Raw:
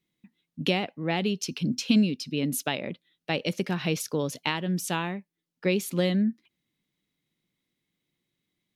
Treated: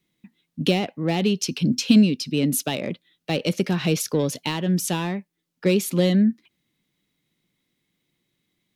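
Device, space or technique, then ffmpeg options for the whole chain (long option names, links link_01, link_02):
one-band saturation: -filter_complex "[0:a]acrossover=split=580|3200[link_01][link_02][link_03];[link_02]asoftclip=type=tanh:threshold=-36dB[link_04];[link_01][link_04][link_03]amix=inputs=3:normalize=0,volume=6.5dB"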